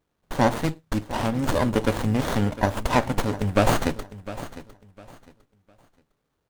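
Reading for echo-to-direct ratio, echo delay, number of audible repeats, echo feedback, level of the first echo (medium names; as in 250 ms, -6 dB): -15.0 dB, 705 ms, 2, 26%, -15.5 dB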